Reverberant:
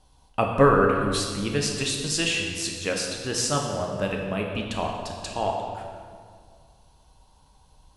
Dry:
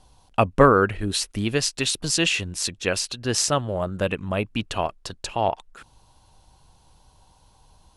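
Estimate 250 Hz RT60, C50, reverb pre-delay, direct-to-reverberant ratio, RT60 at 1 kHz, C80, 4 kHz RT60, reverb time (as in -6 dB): 2.2 s, 3.0 dB, 5 ms, 0.0 dB, 1.9 s, 4.0 dB, 1.4 s, 2.0 s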